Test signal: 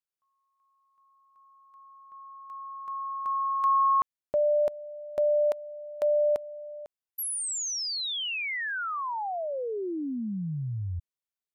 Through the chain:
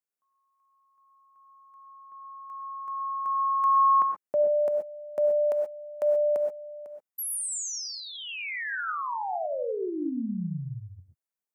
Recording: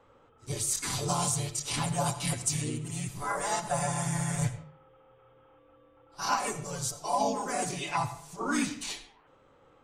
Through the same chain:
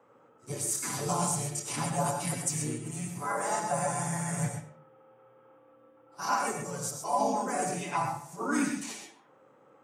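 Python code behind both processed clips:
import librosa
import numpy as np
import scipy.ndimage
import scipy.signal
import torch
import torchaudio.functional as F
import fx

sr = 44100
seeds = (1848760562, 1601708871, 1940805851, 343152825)

y = scipy.signal.sosfilt(scipy.signal.butter(4, 140.0, 'highpass', fs=sr, output='sos'), x)
y = fx.peak_eq(y, sr, hz=3700.0, db=-10.5, octaves=1.0)
y = fx.rev_gated(y, sr, seeds[0], gate_ms=150, shape='rising', drr_db=4.5)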